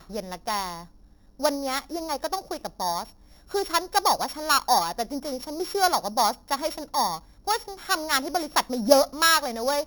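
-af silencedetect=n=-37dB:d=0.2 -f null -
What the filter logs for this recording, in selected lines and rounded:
silence_start: 0.84
silence_end: 1.40 | silence_duration: 0.56
silence_start: 3.10
silence_end: 3.51 | silence_duration: 0.41
silence_start: 7.19
silence_end: 7.47 | silence_duration: 0.29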